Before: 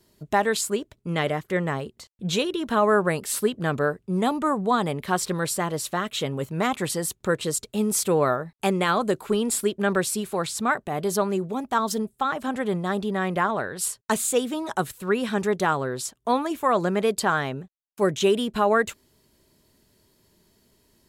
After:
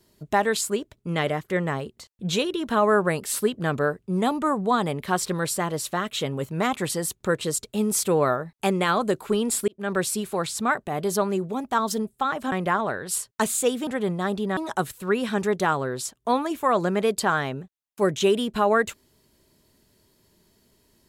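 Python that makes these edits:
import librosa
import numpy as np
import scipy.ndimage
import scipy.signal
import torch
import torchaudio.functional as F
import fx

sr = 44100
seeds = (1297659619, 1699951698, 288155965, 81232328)

y = fx.edit(x, sr, fx.fade_in_span(start_s=9.68, length_s=0.35),
    fx.move(start_s=12.52, length_s=0.7, to_s=14.57), tone=tone)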